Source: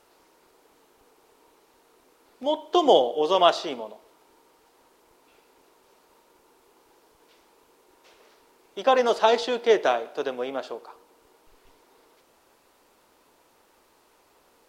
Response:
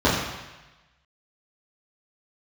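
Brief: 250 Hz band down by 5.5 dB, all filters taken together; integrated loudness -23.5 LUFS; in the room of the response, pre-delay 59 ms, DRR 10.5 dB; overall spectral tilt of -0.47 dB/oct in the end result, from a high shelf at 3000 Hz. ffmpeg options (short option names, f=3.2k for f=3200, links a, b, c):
-filter_complex "[0:a]equalizer=f=250:t=o:g=-8.5,highshelf=f=3k:g=-7.5,asplit=2[a][b];[1:a]atrim=start_sample=2205,adelay=59[c];[b][c]afir=irnorm=-1:irlink=0,volume=-31dB[d];[a][d]amix=inputs=2:normalize=0,volume=1dB"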